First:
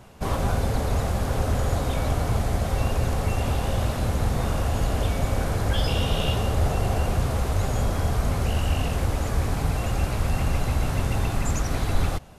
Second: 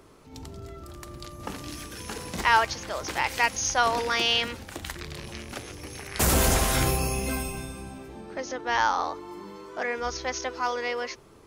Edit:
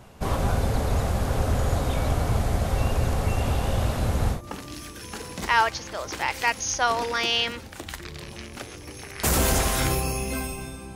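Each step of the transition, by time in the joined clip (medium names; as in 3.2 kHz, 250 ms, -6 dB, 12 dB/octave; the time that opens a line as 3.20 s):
first
4.36 s: go over to second from 1.32 s, crossfade 0.12 s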